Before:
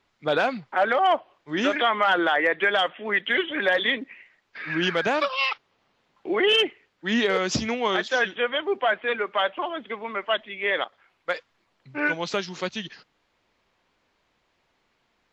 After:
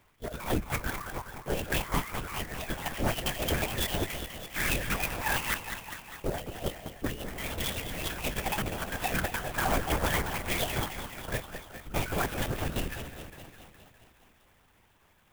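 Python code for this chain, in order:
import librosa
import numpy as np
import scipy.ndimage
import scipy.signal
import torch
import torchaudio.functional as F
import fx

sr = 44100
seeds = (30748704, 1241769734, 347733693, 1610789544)

p1 = fx.pitch_trill(x, sr, semitones=7.5, every_ms=134)
p2 = fx.over_compress(p1, sr, threshold_db=-30.0, ratio=-0.5)
p3 = fx.spec_repair(p2, sr, seeds[0], start_s=7.2, length_s=0.89, low_hz=200.0, high_hz=1400.0, source='after')
p4 = fx.cheby_harmonics(p3, sr, harmonics=(6,), levels_db=(-15,), full_scale_db=-11.0)
p5 = np.clip(10.0 ** (20.0 / 20.0) * p4, -1.0, 1.0) / 10.0 ** (20.0 / 20.0)
p6 = p5 + fx.echo_thinned(p5, sr, ms=206, feedback_pct=66, hz=150.0, wet_db=-8.5, dry=0)
p7 = fx.lpc_vocoder(p6, sr, seeds[1], excitation='whisper', order=8)
y = fx.clock_jitter(p7, sr, seeds[2], jitter_ms=0.046)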